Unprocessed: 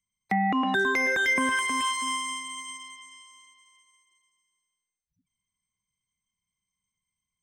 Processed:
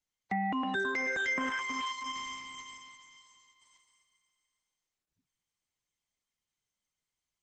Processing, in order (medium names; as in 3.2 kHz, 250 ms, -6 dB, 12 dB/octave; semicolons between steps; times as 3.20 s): trim -7 dB; Opus 12 kbps 48 kHz